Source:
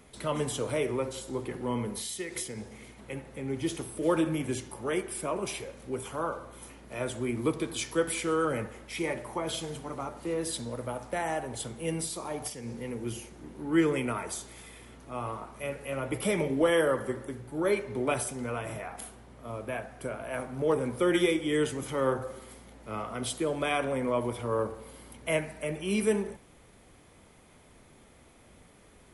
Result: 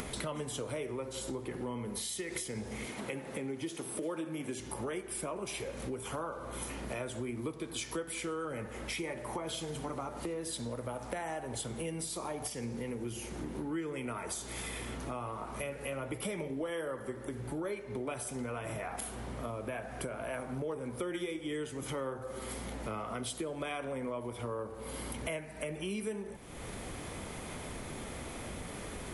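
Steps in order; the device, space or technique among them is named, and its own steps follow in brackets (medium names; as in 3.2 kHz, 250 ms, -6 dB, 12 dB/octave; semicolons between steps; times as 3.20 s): 2.86–4.60 s: high-pass 170 Hz 12 dB/octave; upward and downward compression (upward compressor, threshold -30 dBFS; compression 6:1, threshold -36 dBFS, peak gain reduction 15.5 dB); trim +1 dB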